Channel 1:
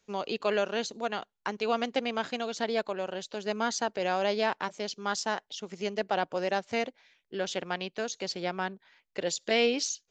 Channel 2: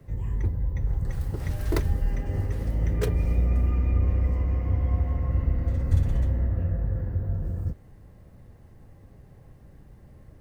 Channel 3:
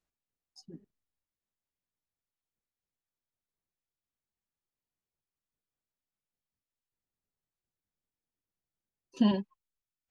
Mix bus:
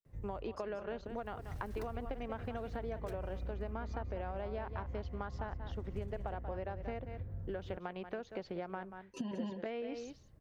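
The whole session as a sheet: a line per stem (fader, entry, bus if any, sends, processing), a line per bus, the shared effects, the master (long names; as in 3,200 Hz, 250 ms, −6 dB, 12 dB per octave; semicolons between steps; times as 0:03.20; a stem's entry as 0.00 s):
+1.5 dB, 0.15 s, bus A, no send, echo send −17 dB, low-pass filter 1,500 Hz 12 dB per octave; downward expander −53 dBFS
−13.0 dB, 0.05 s, no bus, no send, no echo send, automatic ducking −14 dB, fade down 0.20 s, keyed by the third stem
+2.5 dB, 0.00 s, bus A, no send, echo send −8 dB, noise gate with hold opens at −56 dBFS; parametric band 4,200 Hz −7 dB
bus A: 0.0 dB, downward compressor, threshold −30 dBFS, peak gain reduction 12 dB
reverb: not used
echo: single-tap delay 184 ms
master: downward compressor 3 to 1, threshold −39 dBFS, peak gain reduction 11 dB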